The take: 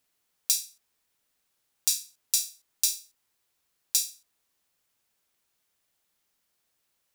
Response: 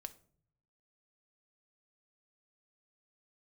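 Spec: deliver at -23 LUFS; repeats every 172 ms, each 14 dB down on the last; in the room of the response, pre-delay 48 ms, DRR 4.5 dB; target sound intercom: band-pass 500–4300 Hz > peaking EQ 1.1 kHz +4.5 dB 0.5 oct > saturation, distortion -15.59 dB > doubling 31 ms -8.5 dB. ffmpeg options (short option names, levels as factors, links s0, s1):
-filter_complex "[0:a]aecho=1:1:172|344:0.2|0.0399,asplit=2[s0][s1];[1:a]atrim=start_sample=2205,adelay=48[s2];[s1][s2]afir=irnorm=-1:irlink=0,volume=1[s3];[s0][s3]amix=inputs=2:normalize=0,highpass=500,lowpass=4300,equalizer=f=1100:t=o:w=0.5:g=4.5,asoftclip=threshold=0.0708,asplit=2[s4][s5];[s5]adelay=31,volume=0.376[s6];[s4][s6]amix=inputs=2:normalize=0,volume=4.47"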